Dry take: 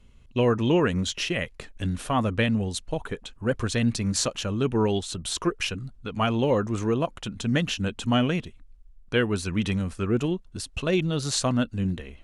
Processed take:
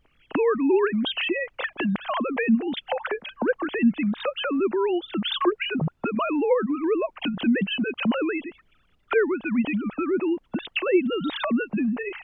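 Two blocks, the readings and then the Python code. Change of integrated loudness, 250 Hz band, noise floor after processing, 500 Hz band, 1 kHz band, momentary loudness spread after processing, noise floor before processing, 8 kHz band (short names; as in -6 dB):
+1.5 dB, +2.5 dB, -64 dBFS, +3.0 dB, +1.5 dB, 6 LU, -52 dBFS, under -40 dB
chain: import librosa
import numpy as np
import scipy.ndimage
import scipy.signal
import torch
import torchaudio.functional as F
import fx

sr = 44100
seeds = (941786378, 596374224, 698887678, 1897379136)

y = fx.sine_speech(x, sr)
y = fx.recorder_agc(y, sr, target_db=-19.5, rise_db_per_s=74.0, max_gain_db=30)
y = fx.dmg_noise_colour(y, sr, seeds[0], colour='brown', level_db=-64.0)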